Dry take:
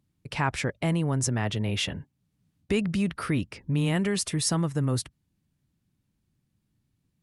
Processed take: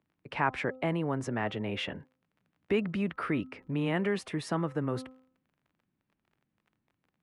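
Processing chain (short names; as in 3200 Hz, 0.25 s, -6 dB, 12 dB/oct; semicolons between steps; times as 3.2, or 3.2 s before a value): crackle 37/s -48 dBFS; three-band isolator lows -13 dB, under 220 Hz, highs -21 dB, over 2800 Hz; de-hum 258.7 Hz, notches 5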